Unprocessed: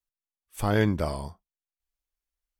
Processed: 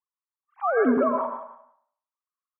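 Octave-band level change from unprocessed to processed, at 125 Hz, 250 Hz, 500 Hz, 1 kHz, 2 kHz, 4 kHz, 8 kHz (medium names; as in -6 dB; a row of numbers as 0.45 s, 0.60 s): under -20 dB, +3.5 dB, +6.5 dB, +8.5 dB, +2.0 dB, under -25 dB, under -35 dB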